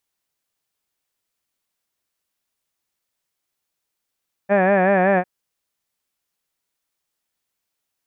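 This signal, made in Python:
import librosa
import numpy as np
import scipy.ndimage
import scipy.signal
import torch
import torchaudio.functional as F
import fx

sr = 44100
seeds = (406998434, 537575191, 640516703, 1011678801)

y = fx.vowel(sr, seeds[0], length_s=0.75, word='had', hz=194.0, glide_st=-0.5, vibrato_hz=5.3, vibrato_st=0.9)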